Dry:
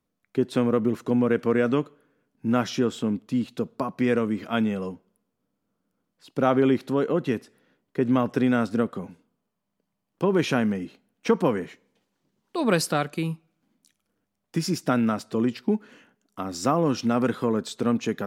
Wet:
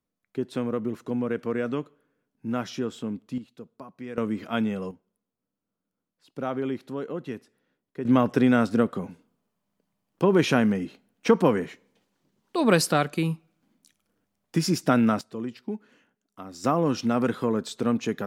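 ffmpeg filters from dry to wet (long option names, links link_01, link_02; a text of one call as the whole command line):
ffmpeg -i in.wav -af "asetnsamples=nb_out_samples=441:pad=0,asendcmd='3.38 volume volume -15dB;4.18 volume volume -2dB;4.91 volume volume -9dB;8.05 volume volume 2dB;15.21 volume volume -9dB;16.64 volume volume -1dB',volume=-6dB" out.wav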